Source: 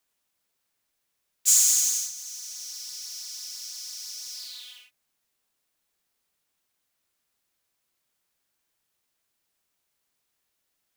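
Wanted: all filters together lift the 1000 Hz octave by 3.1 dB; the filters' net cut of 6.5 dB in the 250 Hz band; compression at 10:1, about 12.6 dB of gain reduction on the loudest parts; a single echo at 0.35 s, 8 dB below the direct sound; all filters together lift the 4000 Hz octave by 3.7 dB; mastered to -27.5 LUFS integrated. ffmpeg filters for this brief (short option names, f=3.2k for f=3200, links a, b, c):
-af "equalizer=f=250:t=o:g=-7,equalizer=f=1k:t=o:g=4,equalizer=f=4k:t=o:g=5,acompressor=threshold=-25dB:ratio=10,aecho=1:1:350:0.398,volume=3.5dB"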